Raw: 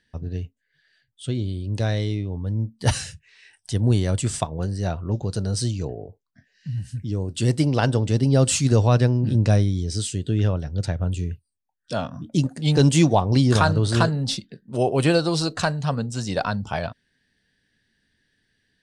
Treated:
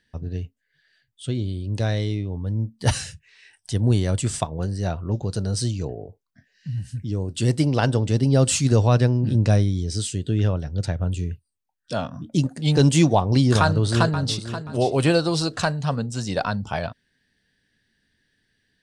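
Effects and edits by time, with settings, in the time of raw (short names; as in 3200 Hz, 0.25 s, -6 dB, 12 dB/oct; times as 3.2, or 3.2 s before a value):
13.6–14.49 echo throw 0.53 s, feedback 25%, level -11.5 dB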